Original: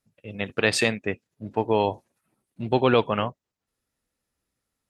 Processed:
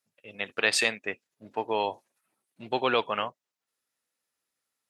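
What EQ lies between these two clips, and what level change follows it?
high-pass 930 Hz 6 dB/octave; 0.0 dB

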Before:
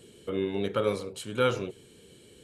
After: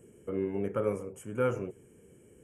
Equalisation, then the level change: Butterworth band-stop 4 kHz, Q 0.98; tilt shelf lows +3.5 dB; treble shelf 8 kHz +4 dB; -5.0 dB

